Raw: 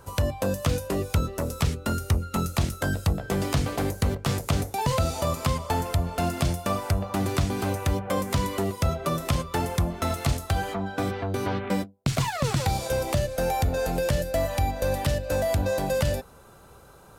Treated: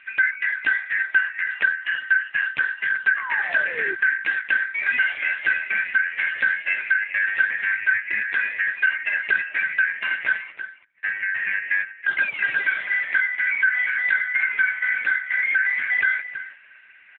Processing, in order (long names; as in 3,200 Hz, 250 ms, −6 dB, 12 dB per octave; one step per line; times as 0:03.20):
band-splitting scrambler in four parts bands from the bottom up 3142
0:10.41–0:11.03: gate with flip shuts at −23 dBFS, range −40 dB
slap from a distant wall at 56 metres, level −12 dB
0:03.16–0:03.95: sound drawn into the spectrogram fall 360–1,200 Hz −35 dBFS
level +5 dB
AMR narrowband 5.9 kbit/s 8,000 Hz